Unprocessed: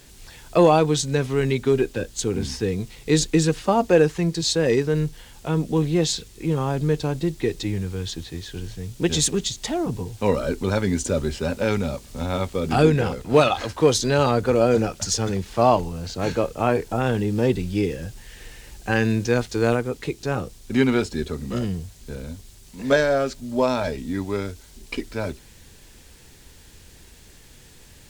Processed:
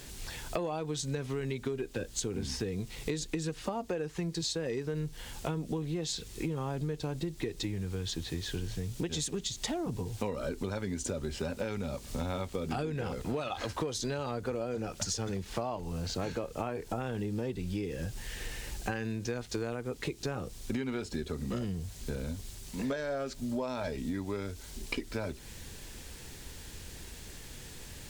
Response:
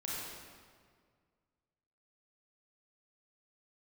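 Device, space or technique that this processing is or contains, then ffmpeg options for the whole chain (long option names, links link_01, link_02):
serial compression, leveller first: -af "acompressor=threshold=-22dB:ratio=2.5,acompressor=threshold=-34dB:ratio=6,volume=2dB"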